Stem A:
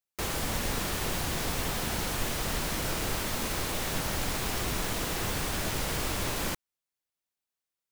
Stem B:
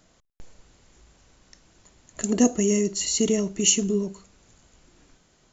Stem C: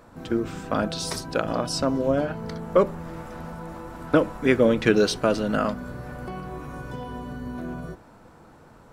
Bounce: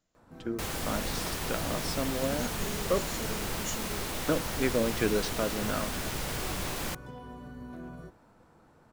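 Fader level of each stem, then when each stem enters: −3.0, −19.0, −9.5 decibels; 0.40, 0.00, 0.15 seconds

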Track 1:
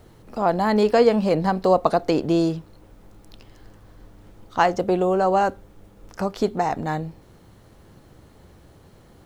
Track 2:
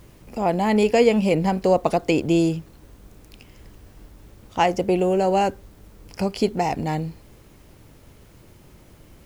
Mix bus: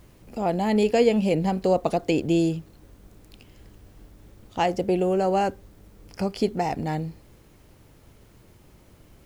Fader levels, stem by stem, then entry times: −13.0, −4.5 decibels; 0.00, 0.00 seconds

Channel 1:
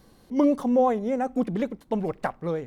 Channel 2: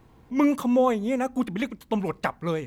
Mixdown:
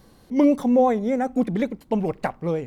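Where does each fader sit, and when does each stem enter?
+2.5, −10.0 decibels; 0.00, 0.00 seconds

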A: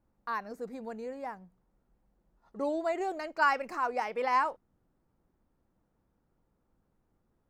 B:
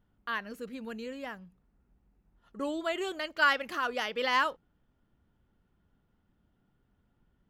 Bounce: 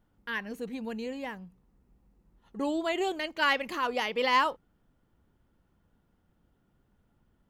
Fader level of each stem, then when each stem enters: −1.0, +1.0 decibels; 0.00, 0.00 seconds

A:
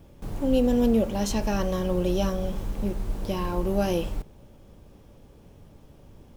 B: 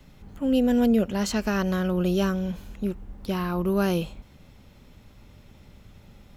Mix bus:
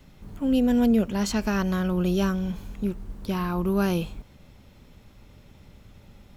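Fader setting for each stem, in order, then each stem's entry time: −13.0, −0.5 decibels; 0.00, 0.00 seconds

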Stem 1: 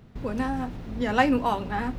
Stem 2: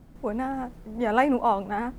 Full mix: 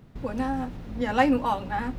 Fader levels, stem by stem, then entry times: −2.0, −7.5 decibels; 0.00, 0.00 seconds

